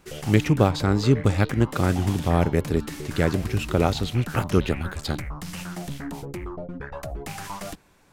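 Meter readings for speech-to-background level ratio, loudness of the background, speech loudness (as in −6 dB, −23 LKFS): 12.0 dB, −35.5 LKFS, −23.5 LKFS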